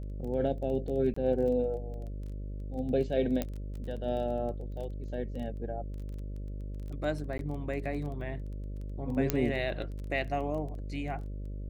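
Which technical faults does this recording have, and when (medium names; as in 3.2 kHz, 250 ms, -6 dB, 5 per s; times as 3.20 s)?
buzz 50 Hz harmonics 12 -38 dBFS
crackle 16 per s -39 dBFS
1.14–1.16 s: dropout 24 ms
3.42 s: pop -17 dBFS
7.38–7.39 s: dropout 12 ms
9.30 s: pop -11 dBFS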